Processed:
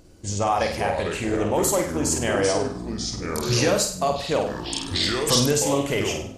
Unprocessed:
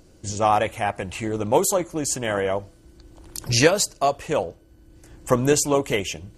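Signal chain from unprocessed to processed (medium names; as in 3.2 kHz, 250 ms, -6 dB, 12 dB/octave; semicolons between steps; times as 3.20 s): peak limiter -13 dBFS, peak gain reduction 9.5 dB; ever faster or slower copies 250 ms, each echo -5 st, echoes 3, each echo -6 dB; 4.41–5.46 s: treble shelf 2.3 kHz +10 dB; on a send: flutter echo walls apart 8.5 m, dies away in 0.49 s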